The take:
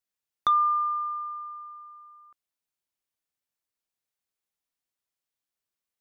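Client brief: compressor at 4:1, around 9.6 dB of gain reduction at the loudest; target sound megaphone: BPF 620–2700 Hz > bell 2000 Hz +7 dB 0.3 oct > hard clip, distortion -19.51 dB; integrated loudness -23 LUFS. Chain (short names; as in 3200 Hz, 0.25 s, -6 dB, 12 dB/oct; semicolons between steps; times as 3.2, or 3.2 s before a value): compressor 4:1, threshold -31 dBFS; BPF 620–2700 Hz; bell 2000 Hz +7 dB 0.3 oct; hard clip -28 dBFS; gain +11 dB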